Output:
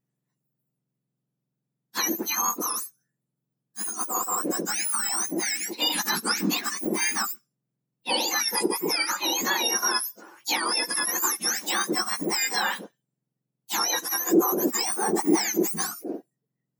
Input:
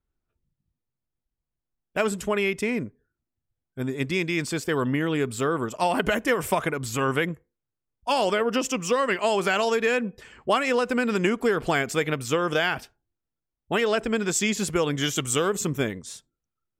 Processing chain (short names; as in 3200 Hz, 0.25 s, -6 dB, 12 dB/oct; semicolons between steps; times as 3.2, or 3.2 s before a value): spectrum mirrored in octaves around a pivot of 1600 Hz; high shelf 7500 Hz +5.5 dB; gain +1 dB